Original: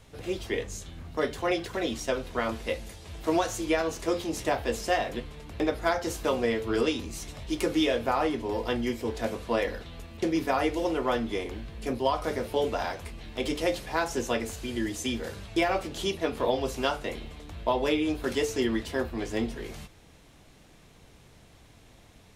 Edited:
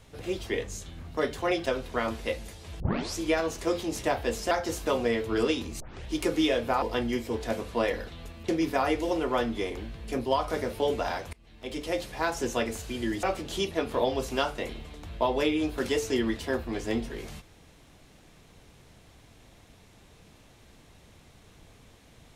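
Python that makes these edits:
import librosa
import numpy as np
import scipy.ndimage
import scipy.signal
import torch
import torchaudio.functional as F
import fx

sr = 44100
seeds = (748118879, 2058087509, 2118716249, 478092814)

y = fx.edit(x, sr, fx.cut(start_s=1.66, length_s=0.41),
    fx.tape_start(start_s=3.21, length_s=0.4),
    fx.cut(start_s=4.92, length_s=0.97),
    fx.tape_start(start_s=7.18, length_s=0.28),
    fx.cut(start_s=8.2, length_s=0.36),
    fx.fade_in_from(start_s=13.07, length_s=1.26, curve='qsin', floor_db=-23.5),
    fx.cut(start_s=14.97, length_s=0.72), tone=tone)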